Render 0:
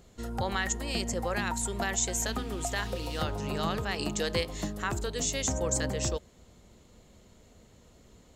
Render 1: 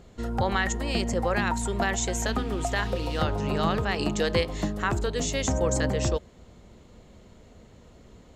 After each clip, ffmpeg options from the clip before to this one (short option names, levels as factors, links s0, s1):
-af "lowpass=f=2900:p=1,volume=2"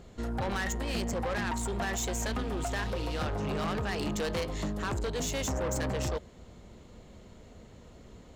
-af "asoftclip=type=tanh:threshold=0.0376"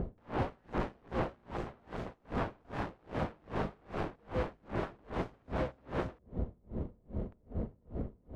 -af "aeval=exprs='(mod(89.1*val(0)+1,2)-1)/89.1':c=same,adynamicsmooth=sensitivity=3.5:basefreq=620,aeval=exprs='val(0)*pow(10,-35*(0.5-0.5*cos(2*PI*2.5*n/s))/20)':c=same,volume=7.94"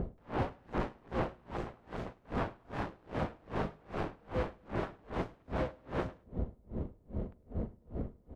-af "aecho=1:1:103|206:0.0668|0.0174"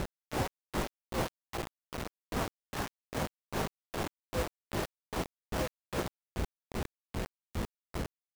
-af "acrusher=bits=5:mix=0:aa=0.000001"